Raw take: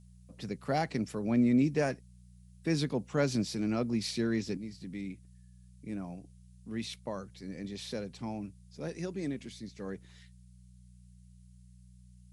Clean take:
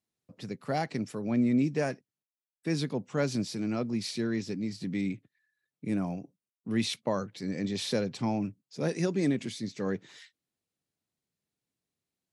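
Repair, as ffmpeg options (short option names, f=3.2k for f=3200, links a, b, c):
-af "bandreject=f=60.8:t=h:w=4,bandreject=f=121.6:t=h:w=4,bandreject=f=182.4:t=h:w=4,agate=range=-21dB:threshold=-49dB,asetnsamples=n=441:p=0,asendcmd='4.57 volume volume 8.5dB',volume=0dB"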